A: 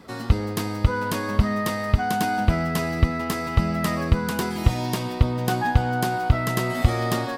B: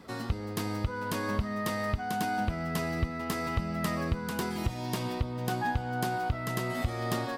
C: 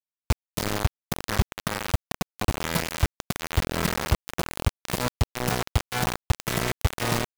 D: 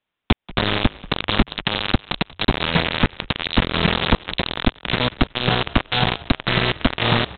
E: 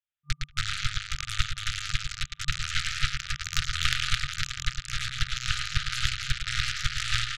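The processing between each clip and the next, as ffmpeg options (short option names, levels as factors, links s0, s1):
-af "alimiter=limit=0.2:level=0:latency=1:release=448,volume=0.631"
-filter_complex "[0:a]acrossover=split=160[s0][s1];[s1]asoftclip=type=tanh:threshold=0.0251[s2];[s0][s2]amix=inputs=2:normalize=0,acrusher=bits=4:mix=0:aa=0.000001,volume=2.37"
-filter_complex "[0:a]acompressor=threshold=0.0447:ratio=2,aresample=8000,aeval=exprs='0.188*sin(PI/2*3.16*val(0)/0.188)':c=same,aresample=44100,asplit=4[s0][s1][s2][s3];[s1]adelay=185,afreqshift=-48,volume=0.106[s4];[s2]adelay=370,afreqshift=-96,volume=0.0327[s5];[s3]adelay=555,afreqshift=-144,volume=0.0102[s6];[s0][s4][s5][s6]amix=inputs=4:normalize=0,volume=2.24"
-af "aecho=1:1:110.8|285.7:0.708|0.708,aeval=exprs='0.944*(cos(1*acos(clip(val(0)/0.944,-1,1)))-cos(1*PI/2))+0.15*(cos(2*acos(clip(val(0)/0.944,-1,1)))-cos(2*PI/2))+0.376*(cos(3*acos(clip(val(0)/0.944,-1,1)))-cos(3*PI/2))+0.0473*(cos(4*acos(clip(val(0)/0.944,-1,1)))-cos(4*PI/2))+0.106*(cos(6*acos(clip(val(0)/0.944,-1,1)))-cos(6*PI/2))':c=same,afftfilt=real='re*(1-between(b*sr/4096,140,1200))':imag='im*(1-between(b*sr/4096,140,1200))':win_size=4096:overlap=0.75,volume=0.708"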